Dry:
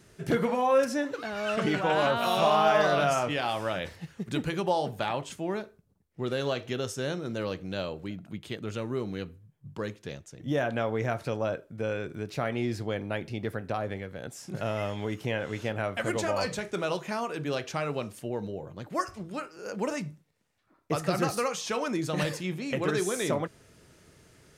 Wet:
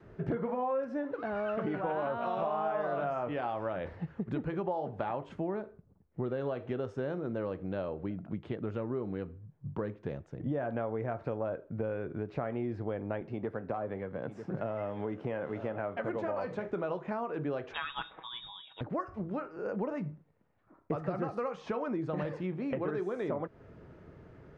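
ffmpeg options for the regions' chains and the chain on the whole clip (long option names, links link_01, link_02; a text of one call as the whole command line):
ffmpeg -i in.wav -filter_complex "[0:a]asettb=1/sr,asplit=3[link_01][link_02][link_03];[link_01]atrim=end=13.214[link_04];[link_02]atrim=start=13.21:end=16.67,asetpts=PTS-STARTPTS,afade=type=in:duration=0.004:curve=qsin,afade=type=out:start_time=3.456:duration=0.004:curve=qsin,aeval=exprs='if(lt(val(0),0),0.708*val(0),val(0))':channel_layout=same,highpass=120,aecho=1:1:943:0.178,atrim=end_sample=152586[link_05];[link_03]atrim=start=16.666[link_06];[link_04][link_05]acrossfade=duration=0.004:curve1=hsin:curve2=qsin[link_07];[link_07][link_06]acrossfade=duration=0.004:curve1=qsin:curve2=hsin,asettb=1/sr,asplit=3[link_08][link_09][link_10];[link_08]atrim=end=17.734[link_11];[link_09]atrim=start=17.73:end=18.81,asetpts=PTS-STARTPTS,afade=type=in:duration=0.004:curve=qsin,afade=type=out:start_time=1.076:duration=0.004:curve=qsin,highshelf=frequency=2100:gain=11,lowpass=frequency=3300:width_type=q:width=0.5098,lowpass=frequency=3300:width_type=q:width=0.6013,lowpass=frequency=3300:width_type=q:width=0.9,lowpass=frequency=3300:width_type=q:width=2.563,afreqshift=-3900,aecho=1:1:6.2:0.44,atrim=end_sample=47628[link_12];[link_10]atrim=start=18.806[link_13];[link_11][link_12]acrossfade=duration=0.004:curve1=hsin:curve2=qsin[link_14];[link_14][link_13]acrossfade=duration=0.004:curve1=qsin:curve2=hsin,lowpass=1200,adynamicequalizer=threshold=0.00562:dfrequency=140:dqfactor=0.95:tfrequency=140:tqfactor=0.95:attack=5:release=100:ratio=0.375:range=2:mode=cutabove:tftype=bell,acompressor=threshold=-38dB:ratio=4,volume=5.5dB" out.wav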